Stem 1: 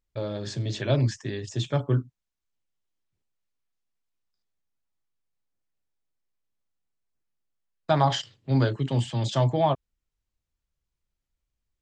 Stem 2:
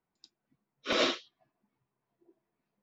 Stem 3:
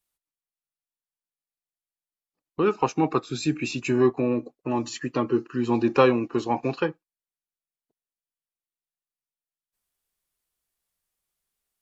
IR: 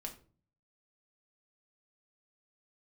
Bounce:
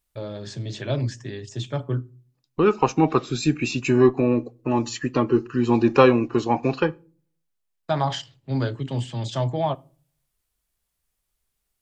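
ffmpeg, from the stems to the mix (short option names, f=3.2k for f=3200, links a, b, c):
-filter_complex "[0:a]volume=-3dB,asplit=2[a][b];[b]volume=-11dB[c];[1:a]adelay=2200,volume=-14.5dB[d];[2:a]lowshelf=f=86:g=10.5,volume=2dB,asplit=3[e][f][g];[f]volume=-13dB[h];[g]apad=whole_len=221642[i];[d][i]sidechaincompress=threshold=-25dB:ratio=3:attack=16:release=969[j];[3:a]atrim=start_sample=2205[k];[c][h]amix=inputs=2:normalize=0[l];[l][k]afir=irnorm=-1:irlink=0[m];[a][j][e][m]amix=inputs=4:normalize=0"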